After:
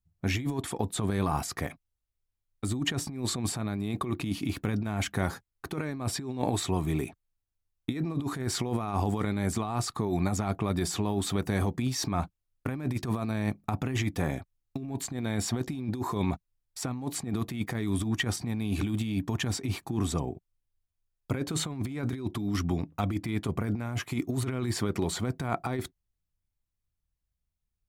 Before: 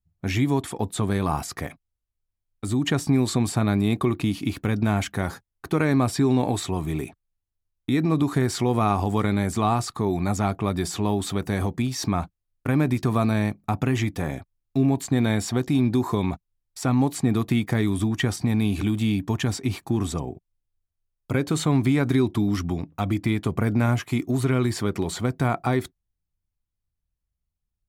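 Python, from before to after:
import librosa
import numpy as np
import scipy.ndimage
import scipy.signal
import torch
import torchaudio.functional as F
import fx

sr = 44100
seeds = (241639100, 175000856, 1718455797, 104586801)

y = fx.over_compress(x, sr, threshold_db=-24.0, ratio=-0.5)
y = y * 10.0 ** (-4.5 / 20.0)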